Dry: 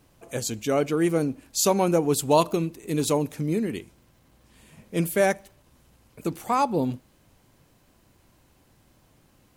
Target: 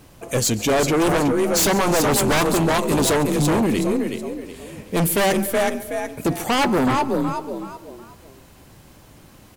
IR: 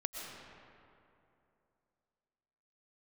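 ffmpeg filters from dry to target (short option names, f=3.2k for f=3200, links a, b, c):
-filter_complex "[0:a]asplit=5[a][b][c][d][e];[b]adelay=372,afreqshift=35,volume=-7dB[f];[c]adelay=744,afreqshift=70,volume=-17.2dB[g];[d]adelay=1116,afreqshift=105,volume=-27.3dB[h];[e]adelay=1488,afreqshift=140,volume=-37.5dB[i];[a][f][g][h][i]amix=inputs=5:normalize=0,aeval=exprs='(tanh(7.94*val(0)+0.35)-tanh(0.35))/7.94':c=same,asplit=2[j][k];[1:a]atrim=start_sample=2205,afade=t=out:st=0.39:d=0.01,atrim=end_sample=17640,adelay=139[l];[k][l]afir=irnorm=-1:irlink=0,volume=-18.5dB[m];[j][m]amix=inputs=2:normalize=0,aeval=exprs='0.188*sin(PI/2*2.82*val(0)/0.188)':c=same"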